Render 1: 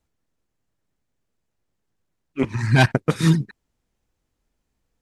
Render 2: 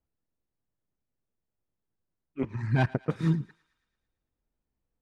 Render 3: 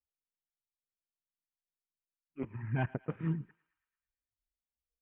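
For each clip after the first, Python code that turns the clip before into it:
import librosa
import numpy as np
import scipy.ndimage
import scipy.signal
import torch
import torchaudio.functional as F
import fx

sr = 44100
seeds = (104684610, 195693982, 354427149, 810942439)

y1 = fx.lowpass(x, sr, hz=1200.0, slope=6)
y1 = fx.echo_thinned(y1, sr, ms=112, feedback_pct=63, hz=820.0, wet_db=-20)
y1 = y1 * librosa.db_to_amplitude(-8.5)
y2 = fx.noise_reduce_blind(y1, sr, reduce_db=17)
y2 = scipy.signal.sosfilt(scipy.signal.butter(16, 3100.0, 'lowpass', fs=sr, output='sos'), y2)
y2 = y2 * librosa.db_to_amplitude(-8.0)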